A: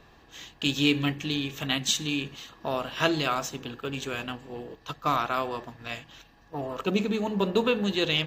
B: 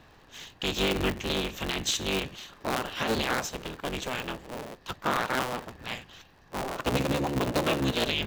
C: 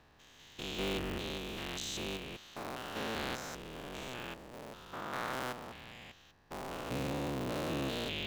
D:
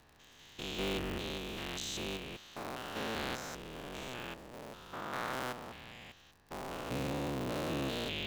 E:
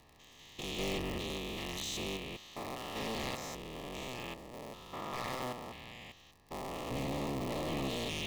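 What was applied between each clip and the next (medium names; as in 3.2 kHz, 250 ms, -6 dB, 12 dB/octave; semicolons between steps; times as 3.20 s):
cycle switcher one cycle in 3, inverted; peak limiter -16.5 dBFS, peak gain reduction 10 dB
spectrogram pixelated in time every 200 ms; trim -7 dB
crackle 38 per s -48 dBFS
one-sided wavefolder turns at -35 dBFS; Butterworth band-stop 1.5 kHz, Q 3.7; trim +1.5 dB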